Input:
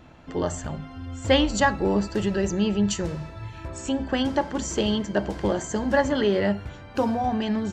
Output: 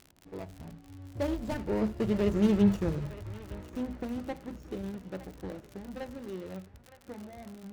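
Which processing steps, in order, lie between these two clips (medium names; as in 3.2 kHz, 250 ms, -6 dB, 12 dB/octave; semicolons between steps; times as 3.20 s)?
median filter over 41 samples; Doppler pass-by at 2.59 s, 26 m/s, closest 13 m; on a send: band-passed feedback delay 913 ms, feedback 46%, band-pass 1.5 kHz, level -12 dB; on the sum: crackle 68 per s -39 dBFS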